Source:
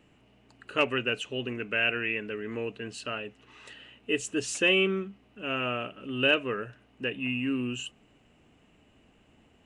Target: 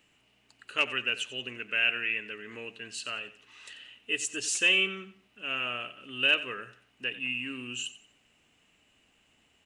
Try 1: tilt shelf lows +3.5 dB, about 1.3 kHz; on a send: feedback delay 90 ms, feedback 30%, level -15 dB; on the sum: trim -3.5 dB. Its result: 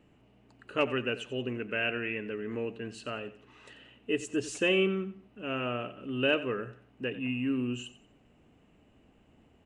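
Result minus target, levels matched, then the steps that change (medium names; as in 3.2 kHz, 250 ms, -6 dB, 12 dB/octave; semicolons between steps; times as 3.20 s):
1 kHz band +4.0 dB
change: tilt shelf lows -8.5 dB, about 1.3 kHz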